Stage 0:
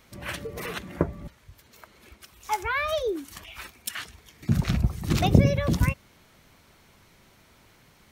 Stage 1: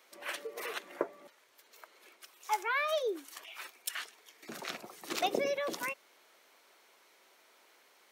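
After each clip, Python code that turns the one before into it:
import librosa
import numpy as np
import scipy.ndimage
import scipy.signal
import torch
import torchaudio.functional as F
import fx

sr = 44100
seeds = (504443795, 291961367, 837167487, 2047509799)

y = scipy.signal.sosfilt(scipy.signal.butter(4, 380.0, 'highpass', fs=sr, output='sos'), x)
y = y * 10.0 ** (-4.5 / 20.0)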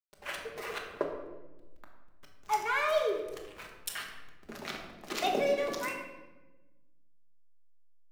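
y = fx.backlash(x, sr, play_db=-39.0)
y = fx.room_shoebox(y, sr, seeds[0], volume_m3=640.0, walls='mixed', distance_m=1.3)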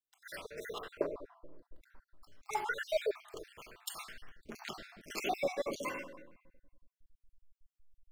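y = fx.spec_dropout(x, sr, seeds[1], share_pct=53)
y = y * 10.0 ** (-1.0 / 20.0)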